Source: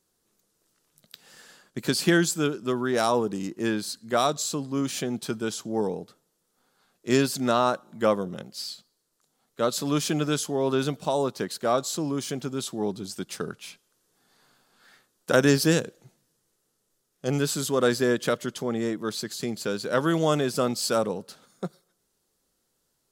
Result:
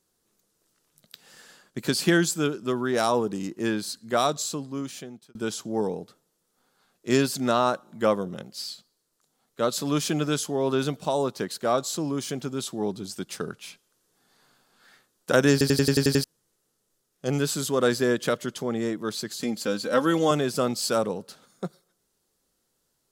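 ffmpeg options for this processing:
ffmpeg -i in.wav -filter_complex "[0:a]asettb=1/sr,asplit=3[link_01][link_02][link_03];[link_01]atrim=end=19.414[link_04];[link_02]atrim=start=19.41:end=20.31,asetpts=PTS-STARTPTS,afade=type=in:duration=0.004:curve=qsin,afade=type=out:start_time=0.896:duration=0.004:curve=qsin,aecho=1:1:3.8:0.65,atrim=end_sample=39690[link_05];[link_03]atrim=start=20.306[link_06];[link_04][link_05]acrossfade=duration=0.004:curve1=hsin:curve2=qsin[link_07];[link_07][link_06]acrossfade=duration=0.004:curve1=qsin:curve2=hsin,asplit=10[link_08][link_09][link_10][link_11][link_12][link_13][link_14][link_15][link_16][link_17];[link_08]atrim=end=5.35,asetpts=PTS-STARTPTS,afade=type=out:start_time=4.35:duration=1[link_18];[link_09]atrim=start=5.35:end=15.612,asetpts=PTS-STARTPTS,afade=type=in:duration=0.004:curve=hsin[link_19];[link_10]atrim=start=15.518:end=15.612[link_20];[link_11]atrim=start=15.518:end=15.612[link_21];[link_12]atrim=start=15.518:end=15.612[link_22];[link_13]atrim=start=15.518:end=15.612[link_23];[link_14]atrim=start=15.518:end=15.612[link_24];[link_15]atrim=start=15.518:end=15.612[link_25];[link_16]atrim=start=15.518:end=15.612[link_26];[link_17]atrim=start=16.238[link_27];[link_18][link_19]concat=n=2:v=0:a=1[link_28];[link_28][link_20]acrossfade=duration=0.004:curve1=hsin:curve2=hsin[link_29];[link_29][link_21]acrossfade=duration=0.004:curve1=hsin:curve2=hsin[link_30];[link_30][link_22]acrossfade=duration=0.004:curve1=hsin:curve2=hsin[link_31];[link_31][link_23]acrossfade=duration=0.004:curve1=hsin:curve2=hsin[link_32];[link_32][link_24]acrossfade=duration=0.004:curve1=hsin:curve2=hsin[link_33];[link_33][link_25]acrossfade=duration=0.004:curve1=hsin:curve2=hsin[link_34];[link_34][link_26]acrossfade=duration=0.004:curve1=hsin:curve2=hsin[link_35];[link_35][link_27]acrossfade=duration=0.004:curve1=hsin:curve2=hsin" out.wav

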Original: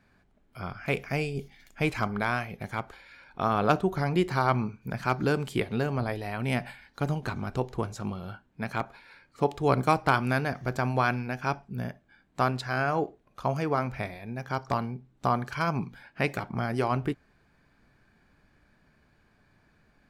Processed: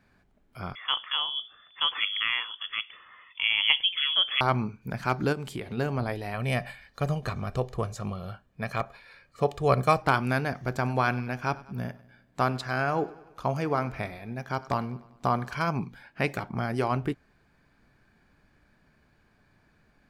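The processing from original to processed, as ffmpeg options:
ffmpeg -i in.wav -filter_complex "[0:a]asettb=1/sr,asplit=3[link_01][link_02][link_03];[link_01]atrim=end=0.754[link_04];[link_02]atrim=start=0.75:end=4.41,asetpts=PTS-STARTPTS,afade=type=in:duration=0.004:curve=qsin,afade=type=out:start_time=3.656:duration=0.004:curve=qsin,lowpass=frequency=3000:width_type=q:width=0.5098,lowpass=frequency=3000:width_type=q:width=0.6013,lowpass=frequency=3000:width_type=q:width=0.9,lowpass=frequency=3000:width_type=q:width=2.563,afreqshift=-3500[link_05];[link_03]atrim=start=4.406[link_06];[link_04][link_05]acrossfade=duration=0.004:curve1=hsin:curve2=qsin[link_07];[link_07][link_06]acrossfade=duration=0.004:curve1=qsin:curve2=hsin,asplit=3[link_08][link_09][link_10];[link_08]afade=type=out:start_time=5.32:duration=0.02[link_11];[link_09]acompressor=threshold=-30dB:ratio=6:attack=3.2:release=140:knee=1:detection=peak,afade=type=in:start_time=5.32:duration=0.02,afade=type=out:start_time=5.77:duration=0.02[link_12];[link_10]afade=type=in:start_time=5.77:duration=0.02[link_13];[link_11][link_12][link_13]amix=inputs=3:normalize=0,asettb=1/sr,asplit=3[link_14][link_15][link_16];[link_14]atrim=end=6.344[link_17];[link_15]atrim=start=6.34:end=10.02,asetpts=PTS-STARTPTS,afade=type=in:duration=0.004:curve=qsin,afade=type=out:start_time=3.676:duration=0.004:curve=qsin,aecho=1:1:1.7:0.51,atrim=end_sample=162288[link_18];[link_16]atrim=start=10.016[link_19];[link_17][link_18]acrossfade=duration=0.004:curve1=hsin:curve2=qsin[link_20];[link_20][link_19]acrossfade=duration=0.004:curve1=qsin:curve2=hsin,asettb=1/sr,asplit=3[link_21][link_22][link_23];[link_21]atrim=end=10.684[link_24];[link_22]atrim=start=10.68:end=15.59,asetpts=PTS-STARTPTS,afade=type=in:duration=0.004:curve=qsin,afade=type=out:start_time=4.906:duration=0.004:curve=qsin,aecho=1:1:98|196|294|392|490:0.1|0.057|0.0325|0.0185|0.0106,atrim=end_sample=216531[link_25];[link_23]atrim=start=15.586[link_26];[link_24][link_25]acrossfade=duration=0.004:curve1=hsin:curve2=qsin[link_27];[link_27][link_26]acrossfade=duration=0.004:curve1=qsin:curve2=hsin" out.wav

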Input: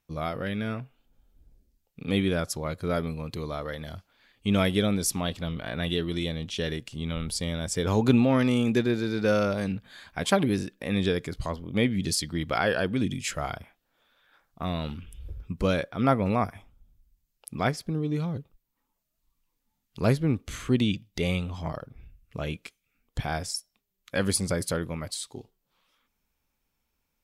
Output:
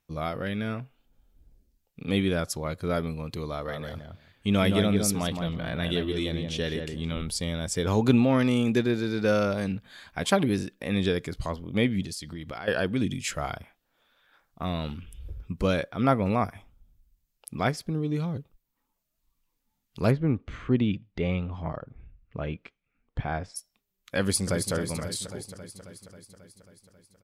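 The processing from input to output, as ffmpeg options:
ffmpeg -i in.wav -filter_complex "[0:a]asettb=1/sr,asplit=3[link_01][link_02][link_03];[link_01]atrim=end=3.514[link_04];[link_02]atrim=start=3.51:end=7.22,asetpts=PTS-STARTPTS,afade=type=in:duration=0.004:curve=qsin,afade=type=out:start_time=3.706:duration=0.004:curve=qsin,asplit=2[link_05][link_06];[link_06]adelay=167,lowpass=frequency=1500:poles=1,volume=-4dB,asplit=2[link_07][link_08];[link_08]adelay=167,lowpass=frequency=1500:poles=1,volume=0.16,asplit=2[link_09][link_10];[link_10]adelay=167,lowpass=frequency=1500:poles=1,volume=0.16[link_11];[link_05][link_07][link_09][link_11]amix=inputs=4:normalize=0,atrim=end_sample=163611[link_12];[link_03]atrim=start=7.216[link_13];[link_04][link_12]acrossfade=duration=0.004:curve1=hsin:curve2=qsin[link_14];[link_14][link_13]acrossfade=duration=0.004:curve1=qsin:curve2=hsin,asettb=1/sr,asplit=3[link_15][link_16][link_17];[link_15]atrim=end=12.024[link_18];[link_16]atrim=start=12.02:end=12.68,asetpts=PTS-STARTPTS,afade=type=in:duration=0.004:curve=qsin,afade=type=out:start_time=0.656:duration=0.004:curve=qsin,acompressor=threshold=-34dB:ratio=5:attack=3.2:release=140:knee=1:detection=peak[link_19];[link_17]atrim=start=12.676[link_20];[link_18][link_19]acrossfade=duration=0.004:curve1=hsin:curve2=qsin[link_21];[link_21][link_20]acrossfade=duration=0.004:curve1=qsin:curve2=hsin,asplit=3[link_22][link_23][link_24];[link_22]afade=type=out:start_time=20.1:duration=0.02[link_25];[link_23]lowpass=2100,afade=type=in:start_time=20.1:duration=0.02,afade=type=out:start_time=23.55:duration=0.02[link_26];[link_24]afade=type=in:start_time=23.55:duration=0.02[link_27];[link_25][link_26][link_27]amix=inputs=3:normalize=0,asplit=2[link_28][link_29];[link_29]afade=type=in:start_time=24.2:duration=0.01,afade=type=out:start_time=24.73:duration=0.01,aecho=0:1:270|540|810|1080|1350|1620|1890|2160|2430|2700|2970:0.375837|0.263086|0.18416|0.128912|0.0902386|0.063167|0.0442169|0.0309518|0.0216663|0.0151664|0.0106165[link_30];[link_28][link_30]amix=inputs=2:normalize=0" out.wav

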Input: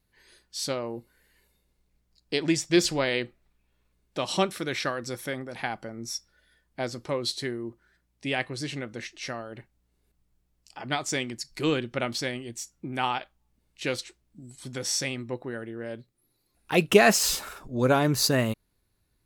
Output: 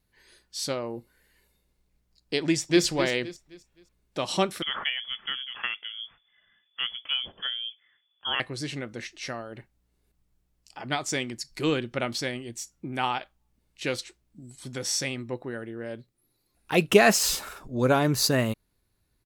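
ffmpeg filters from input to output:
ffmpeg -i in.wav -filter_complex "[0:a]asplit=2[link_01][link_02];[link_02]afade=type=in:start_time=2.43:duration=0.01,afade=type=out:start_time=2.84:duration=0.01,aecho=0:1:260|520|780|1040:0.298538|0.104488|0.0365709|0.0127998[link_03];[link_01][link_03]amix=inputs=2:normalize=0,asettb=1/sr,asplit=3[link_04][link_05][link_06];[link_04]atrim=end=4.624[link_07];[link_05]atrim=start=4.62:end=8.4,asetpts=PTS-STARTPTS,afade=type=in:duration=0.004:curve=qsin,afade=type=out:start_time=3.776:duration=0.004:curve=qsin,lowpass=frequency=3000:width_type=q:width=0.5098,lowpass=frequency=3000:width_type=q:width=0.6013,lowpass=frequency=3000:width_type=q:width=0.9,lowpass=frequency=3000:width_type=q:width=2.563,afreqshift=-3500[link_08];[link_06]atrim=start=8.396[link_09];[link_07][link_08]acrossfade=duration=0.004:curve1=hsin:curve2=qsin[link_10];[link_10][link_09]acrossfade=duration=0.004:curve1=qsin:curve2=hsin" out.wav

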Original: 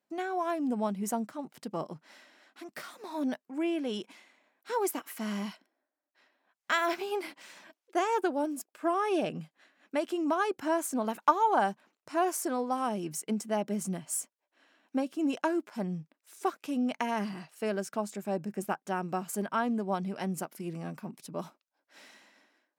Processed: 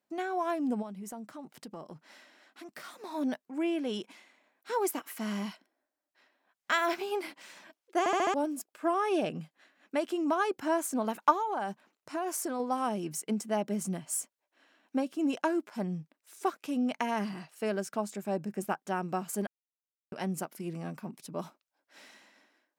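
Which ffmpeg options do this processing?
ffmpeg -i in.wav -filter_complex "[0:a]asplit=3[link_01][link_02][link_03];[link_01]afade=type=out:start_time=0.81:duration=0.02[link_04];[link_02]acompressor=threshold=-42dB:ratio=3:attack=3.2:release=140:knee=1:detection=peak,afade=type=in:start_time=0.81:duration=0.02,afade=type=out:start_time=2.84:duration=0.02[link_05];[link_03]afade=type=in:start_time=2.84:duration=0.02[link_06];[link_04][link_05][link_06]amix=inputs=3:normalize=0,asettb=1/sr,asplit=3[link_07][link_08][link_09];[link_07]atrim=end=11.354[link_10];[link_08]atrim=start=11.35:end=12.6,asetpts=PTS-STARTPTS,afade=type=in:duration=0.004:curve=qsin,afade=type=out:start_time=1.246:duration=0.004:curve=qsin,acompressor=threshold=-29dB:ratio=6:attack=3.2:release=140:knee=1:detection=peak[link_11];[link_09]atrim=start=12.596[link_12];[link_10][link_11]acrossfade=duration=0.004:curve1=hsin:curve2=qsin[link_13];[link_13][link_12]acrossfade=duration=0.004:curve1=qsin:curve2=hsin,asplit=8[link_14][link_15][link_16][link_17][link_18][link_19][link_20][link_21];[link_14]atrim=end=8.062[link_22];[link_15]atrim=start=7.988:end=8.062[link_23];[link_16]atrim=start=7.988:end=8.062[link_24];[link_17]atrim=start=7.988:end=8.062[link_25];[link_18]atrim=start=7.988:end=8.062[link_26];[link_19]atrim=start=8.338:end=19.47,asetpts=PTS-STARTPTS,afade=type=out:start_time=11.128:duration=0.004:curve=hsin[link_27];[link_20]atrim=start=19.47:end=20.12,asetpts=PTS-STARTPTS,volume=0[link_28];[link_21]atrim=start=20.12,asetpts=PTS-STARTPTS,afade=type=in:duration=0.004:curve=hsin[link_29];[link_22][link_23]acrossfade=duration=0.004:curve1=hsin:curve2=hsin[link_30];[link_30][link_24]acrossfade=duration=0.004:curve1=hsin:curve2=hsin[link_31];[link_31][link_25]acrossfade=duration=0.004:curve1=hsin:curve2=hsin[link_32];[link_32][link_26]acrossfade=duration=0.004:curve1=hsin:curve2=hsin[link_33];[link_27][link_28][link_29]concat=n=3:v=0:a=1[link_34];[link_33][link_34]acrossfade=duration=0.004:curve1=hsin:curve2=hsin" out.wav

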